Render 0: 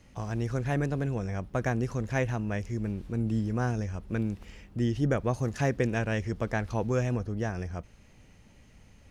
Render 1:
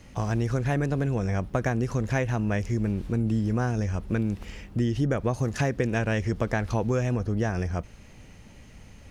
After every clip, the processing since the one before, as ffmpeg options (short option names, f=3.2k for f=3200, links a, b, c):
-af "acompressor=threshold=-29dB:ratio=6,volume=7.5dB"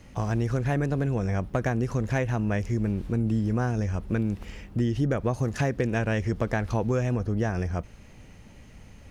-af "equalizer=f=5.7k:t=o:w=2.5:g=-2.5,asoftclip=type=hard:threshold=-16dB"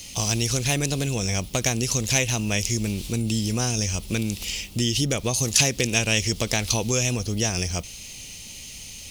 -af "aexciter=amount=9.3:drive=8.1:freq=2.5k"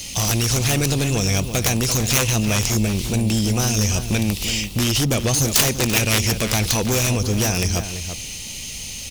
-filter_complex "[0:a]aeval=exprs='0.631*(cos(1*acos(clip(val(0)/0.631,-1,1)))-cos(1*PI/2))+0.282*(cos(7*acos(clip(val(0)/0.631,-1,1)))-cos(7*PI/2))':c=same,asplit=2[a][b];[b]adelay=338.2,volume=-9dB,highshelf=f=4k:g=-7.61[c];[a][c]amix=inputs=2:normalize=0,volume=1dB"